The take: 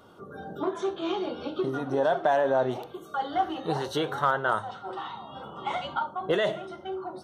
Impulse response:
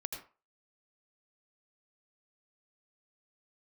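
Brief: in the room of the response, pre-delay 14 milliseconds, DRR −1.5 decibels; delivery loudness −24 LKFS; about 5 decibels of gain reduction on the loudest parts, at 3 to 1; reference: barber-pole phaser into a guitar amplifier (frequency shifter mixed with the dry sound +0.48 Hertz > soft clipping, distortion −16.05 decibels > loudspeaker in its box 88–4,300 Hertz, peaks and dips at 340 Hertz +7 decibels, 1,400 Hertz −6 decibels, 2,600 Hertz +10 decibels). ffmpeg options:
-filter_complex "[0:a]acompressor=threshold=-26dB:ratio=3,asplit=2[link_01][link_02];[1:a]atrim=start_sample=2205,adelay=14[link_03];[link_02][link_03]afir=irnorm=-1:irlink=0,volume=2dB[link_04];[link_01][link_04]amix=inputs=2:normalize=0,asplit=2[link_05][link_06];[link_06]afreqshift=0.48[link_07];[link_05][link_07]amix=inputs=2:normalize=1,asoftclip=threshold=-21dB,highpass=88,equalizer=frequency=340:width_type=q:width=4:gain=7,equalizer=frequency=1400:width_type=q:width=4:gain=-6,equalizer=frequency=2600:width_type=q:width=4:gain=10,lowpass=frequency=4300:width=0.5412,lowpass=frequency=4300:width=1.3066,volume=7dB"

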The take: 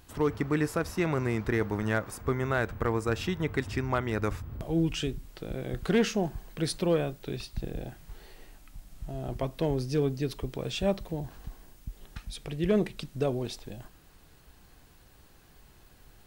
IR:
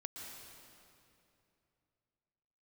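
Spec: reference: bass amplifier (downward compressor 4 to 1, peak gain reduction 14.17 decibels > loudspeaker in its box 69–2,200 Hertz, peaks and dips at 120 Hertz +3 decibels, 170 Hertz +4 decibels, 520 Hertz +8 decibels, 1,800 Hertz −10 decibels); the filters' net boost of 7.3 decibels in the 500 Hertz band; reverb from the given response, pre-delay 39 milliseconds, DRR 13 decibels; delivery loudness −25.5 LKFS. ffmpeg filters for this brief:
-filter_complex "[0:a]equalizer=frequency=500:width_type=o:gain=4,asplit=2[link_01][link_02];[1:a]atrim=start_sample=2205,adelay=39[link_03];[link_02][link_03]afir=irnorm=-1:irlink=0,volume=-10.5dB[link_04];[link_01][link_04]amix=inputs=2:normalize=0,acompressor=threshold=-34dB:ratio=4,highpass=frequency=69:width=0.5412,highpass=frequency=69:width=1.3066,equalizer=frequency=120:width_type=q:width=4:gain=3,equalizer=frequency=170:width_type=q:width=4:gain=4,equalizer=frequency=520:width_type=q:width=4:gain=8,equalizer=frequency=1800:width_type=q:width=4:gain=-10,lowpass=frequency=2200:width=0.5412,lowpass=frequency=2200:width=1.3066,volume=10.5dB"

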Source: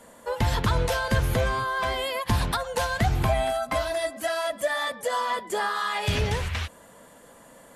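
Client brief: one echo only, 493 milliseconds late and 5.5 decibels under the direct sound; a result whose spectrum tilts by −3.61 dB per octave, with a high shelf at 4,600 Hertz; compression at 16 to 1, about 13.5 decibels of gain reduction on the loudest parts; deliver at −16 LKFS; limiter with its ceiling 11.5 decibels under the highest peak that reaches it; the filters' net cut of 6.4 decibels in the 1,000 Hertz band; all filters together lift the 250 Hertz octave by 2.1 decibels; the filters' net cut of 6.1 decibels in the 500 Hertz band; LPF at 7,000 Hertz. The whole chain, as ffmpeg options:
ffmpeg -i in.wav -af "lowpass=7000,equalizer=frequency=250:width_type=o:gain=4.5,equalizer=frequency=500:width_type=o:gain=-6.5,equalizer=frequency=1000:width_type=o:gain=-6.5,highshelf=frequency=4600:gain=7,acompressor=threshold=-32dB:ratio=16,alimiter=level_in=7.5dB:limit=-24dB:level=0:latency=1,volume=-7.5dB,aecho=1:1:493:0.531,volume=23dB" out.wav

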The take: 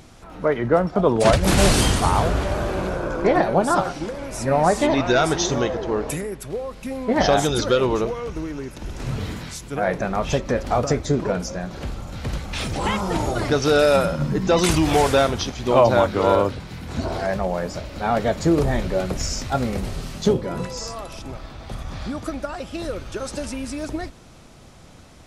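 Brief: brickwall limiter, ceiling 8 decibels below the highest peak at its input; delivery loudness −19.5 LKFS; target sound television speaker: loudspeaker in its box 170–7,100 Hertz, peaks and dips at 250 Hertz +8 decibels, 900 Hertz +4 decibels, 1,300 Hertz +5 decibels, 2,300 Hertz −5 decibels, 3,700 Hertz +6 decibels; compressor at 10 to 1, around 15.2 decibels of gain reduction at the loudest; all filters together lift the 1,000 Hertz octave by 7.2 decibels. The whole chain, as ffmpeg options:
ffmpeg -i in.wav -af "equalizer=frequency=1000:width_type=o:gain=5.5,acompressor=threshold=-23dB:ratio=10,alimiter=limit=-19dB:level=0:latency=1,highpass=frequency=170:width=0.5412,highpass=frequency=170:width=1.3066,equalizer=frequency=250:width_type=q:width=4:gain=8,equalizer=frequency=900:width_type=q:width=4:gain=4,equalizer=frequency=1300:width_type=q:width=4:gain=5,equalizer=frequency=2300:width_type=q:width=4:gain=-5,equalizer=frequency=3700:width_type=q:width=4:gain=6,lowpass=frequency=7100:width=0.5412,lowpass=frequency=7100:width=1.3066,volume=9dB" out.wav

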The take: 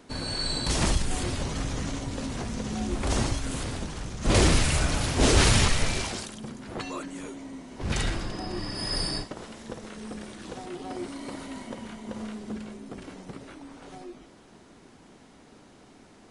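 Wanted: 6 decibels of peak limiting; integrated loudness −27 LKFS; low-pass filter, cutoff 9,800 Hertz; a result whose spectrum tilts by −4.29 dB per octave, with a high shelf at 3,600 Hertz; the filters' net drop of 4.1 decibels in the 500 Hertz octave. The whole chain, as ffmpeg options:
ffmpeg -i in.wav -af "lowpass=9800,equalizer=frequency=500:width_type=o:gain=-5.5,highshelf=frequency=3600:gain=-3.5,volume=4.5dB,alimiter=limit=-11dB:level=0:latency=1" out.wav

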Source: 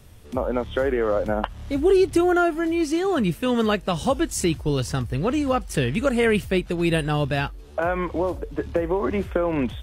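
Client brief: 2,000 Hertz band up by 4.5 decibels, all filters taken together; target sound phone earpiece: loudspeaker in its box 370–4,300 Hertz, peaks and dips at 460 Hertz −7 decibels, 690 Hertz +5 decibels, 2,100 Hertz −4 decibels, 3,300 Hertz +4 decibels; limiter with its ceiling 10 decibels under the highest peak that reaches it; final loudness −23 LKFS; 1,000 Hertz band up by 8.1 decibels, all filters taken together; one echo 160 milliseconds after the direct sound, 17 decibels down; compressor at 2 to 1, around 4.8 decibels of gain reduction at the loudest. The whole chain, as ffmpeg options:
ffmpeg -i in.wav -af "equalizer=frequency=1000:width_type=o:gain=8.5,equalizer=frequency=2000:width_type=o:gain=4,acompressor=threshold=-21dB:ratio=2,alimiter=limit=-15dB:level=0:latency=1,highpass=370,equalizer=frequency=460:width_type=q:width=4:gain=-7,equalizer=frequency=690:width_type=q:width=4:gain=5,equalizer=frequency=2100:width_type=q:width=4:gain=-4,equalizer=frequency=3300:width_type=q:width=4:gain=4,lowpass=frequency=4300:width=0.5412,lowpass=frequency=4300:width=1.3066,aecho=1:1:160:0.141,volume=5dB" out.wav

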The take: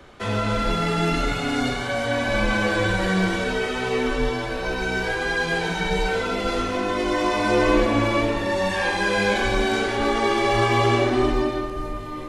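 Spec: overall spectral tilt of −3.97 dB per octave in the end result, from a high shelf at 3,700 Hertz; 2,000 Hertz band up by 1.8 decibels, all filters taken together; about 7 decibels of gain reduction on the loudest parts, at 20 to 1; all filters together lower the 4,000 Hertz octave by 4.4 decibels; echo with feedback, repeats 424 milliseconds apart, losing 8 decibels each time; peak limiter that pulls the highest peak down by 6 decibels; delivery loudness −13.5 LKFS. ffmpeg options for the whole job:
ffmpeg -i in.wav -af "equalizer=frequency=2000:width_type=o:gain=5,highshelf=frequency=3700:gain=-8,equalizer=frequency=4000:width_type=o:gain=-3,acompressor=threshold=-21dB:ratio=20,alimiter=limit=-19dB:level=0:latency=1,aecho=1:1:424|848|1272|1696|2120:0.398|0.159|0.0637|0.0255|0.0102,volume=13.5dB" out.wav

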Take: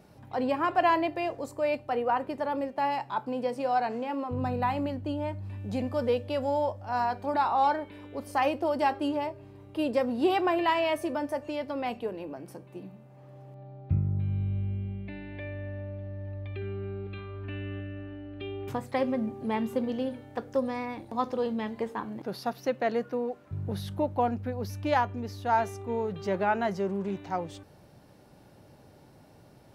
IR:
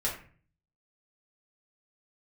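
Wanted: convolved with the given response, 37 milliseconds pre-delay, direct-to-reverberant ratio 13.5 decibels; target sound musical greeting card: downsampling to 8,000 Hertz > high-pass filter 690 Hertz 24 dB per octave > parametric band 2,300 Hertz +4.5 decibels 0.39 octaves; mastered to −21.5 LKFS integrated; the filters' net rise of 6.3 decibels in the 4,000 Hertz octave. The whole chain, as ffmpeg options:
-filter_complex "[0:a]equalizer=frequency=4000:width_type=o:gain=8,asplit=2[link_01][link_02];[1:a]atrim=start_sample=2205,adelay=37[link_03];[link_02][link_03]afir=irnorm=-1:irlink=0,volume=-19.5dB[link_04];[link_01][link_04]amix=inputs=2:normalize=0,aresample=8000,aresample=44100,highpass=frequency=690:width=0.5412,highpass=frequency=690:width=1.3066,equalizer=frequency=2300:width_type=o:width=0.39:gain=4.5,volume=11dB"

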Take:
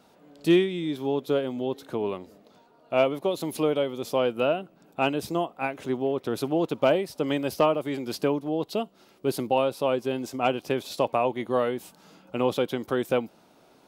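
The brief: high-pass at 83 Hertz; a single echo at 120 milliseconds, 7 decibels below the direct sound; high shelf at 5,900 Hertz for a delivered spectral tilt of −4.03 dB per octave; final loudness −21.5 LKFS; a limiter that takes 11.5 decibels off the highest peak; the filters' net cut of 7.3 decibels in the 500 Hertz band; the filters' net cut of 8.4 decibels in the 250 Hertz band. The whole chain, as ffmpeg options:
ffmpeg -i in.wav -af "highpass=83,equalizer=frequency=250:width_type=o:gain=-8.5,equalizer=frequency=500:width_type=o:gain=-7,highshelf=frequency=5900:gain=6.5,alimiter=limit=-23.5dB:level=0:latency=1,aecho=1:1:120:0.447,volume=14dB" out.wav

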